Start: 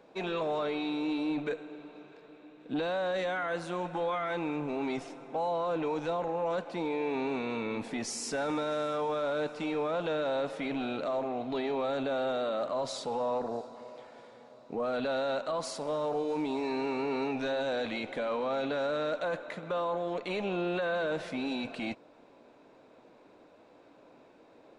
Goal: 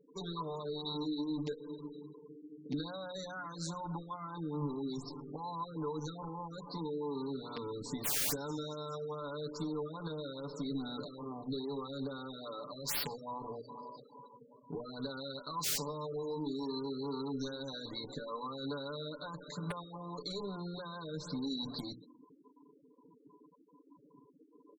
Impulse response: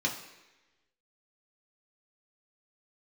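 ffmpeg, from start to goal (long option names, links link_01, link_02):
-af "bass=frequency=250:gain=-4,treble=frequency=4000:gain=-5,bandreject=frequency=60:width_type=h:width=6,bandreject=frequency=120:width_type=h:width=6,bandreject=frequency=180:width_type=h:width=6,bandreject=frequency=240:width_type=h:width=6,bandreject=frequency=300:width_type=h:width=6,bandreject=frequency=360:width_type=h:width=6,bandreject=frequency=420:width_type=h:width=6,bandreject=frequency=480:width_type=h:width=6,aecho=1:1:134|268|402|536:0.0794|0.0469|0.0277|0.0163,acompressor=threshold=-38dB:ratio=5,firequalizer=gain_entry='entry(170,0);entry(280,-8);entry(430,-9);entry(670,-22);entry(1000,-4);entry(1600,-15);entry(2600,-30);entry(4100,5);entry(7300,11);entry(13000,-18)':delay=0.05:min_phase=1,aeval=exprs='(mod(79.4*val(0)+1,2)-1)/79.4':channel_layout=same,afftfilt=real='re*gte(hypot(re,im),0.00178)':imag='im*gte(hypot(re,im),0.00178)':win_size=1024:overlap=0.75,aecho=1:1:6.9:0.86,afftfilt=real='re*(1-between(b*sr/1024,830*pow(8000/830,0.5+0.5*sin(2*PI*2.4*pts/sr))/1.41,830*pow(8000/830,0.5+0.5*sin(2*PI*2.4*pts/sr))*1.41))':imag='im*(1-between(b*sr/1024,830*pow(8000/830,0.5+0.5*sin(2*PI*2.4*pts/sr))/1.41,830*pow(8000/830,0.5+0.5*sin(2*PI*2.4*pts/sr))*1.41))':win_size=1024:overlap=0.75,volume=7.5dB"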